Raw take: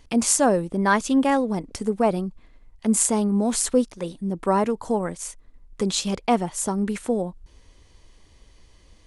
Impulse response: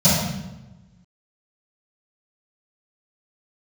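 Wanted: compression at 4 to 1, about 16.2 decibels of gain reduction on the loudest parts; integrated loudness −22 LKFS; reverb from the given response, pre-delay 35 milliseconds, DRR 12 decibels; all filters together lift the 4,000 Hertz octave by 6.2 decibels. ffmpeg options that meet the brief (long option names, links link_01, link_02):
-filter_complex "[0:a]equalizer=frequency=4000:width_type=o:gain=7.5,acompressor=threshold=-35dB:ratio=4,asplit=2[link_01][link_02];[1:a]atrim=start_sample=2205,adelay=35[link_03];[link_02][link_03]afir=irnorm=-1:irlink=0,volume=-32.5dB[link_04];[link_01][link_04]amix=inputs=2:normalize=0,volume=12dB"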